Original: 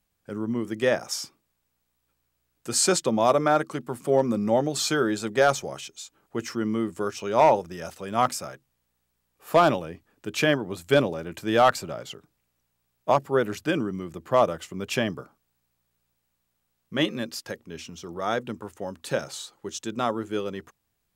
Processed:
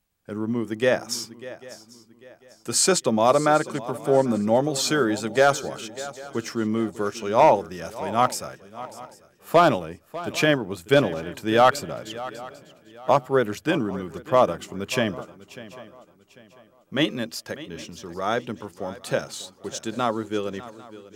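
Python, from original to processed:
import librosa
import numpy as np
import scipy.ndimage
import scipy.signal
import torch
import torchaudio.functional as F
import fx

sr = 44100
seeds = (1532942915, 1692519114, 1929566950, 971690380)

p1 = np.sign(x) * np.maximum(np.abs(x) - 10.0 ** (-41.5 / 20.0), 0.0)
p2 = x + (p1 * 10.0 ** (-10.5 / 20.0))
y = fx.echo_swing(p2, sr, ms=795, ratio=3, feedback_pct=31, wet_db=-17)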